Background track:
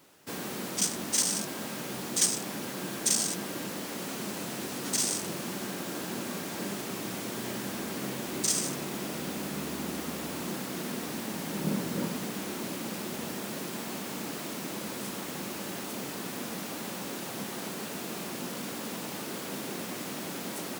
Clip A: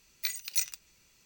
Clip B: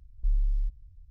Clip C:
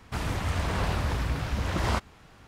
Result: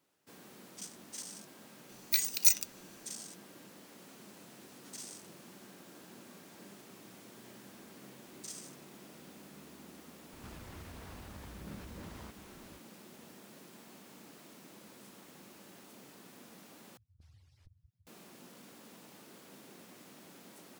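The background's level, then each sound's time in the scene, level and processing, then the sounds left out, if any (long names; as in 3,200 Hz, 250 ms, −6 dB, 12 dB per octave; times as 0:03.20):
background track −18 dB
0:01.89: mix in A −2 dB + high-shelf EQ 4,200 Hz +8.5 dB
0:10.32: mix in C −5.5 dB + downward compressor 12 to 1, threshold −41 dBFS
0:16.97: overwrite with B −0.5 dB + harmonic-percussive split with one part muted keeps percussive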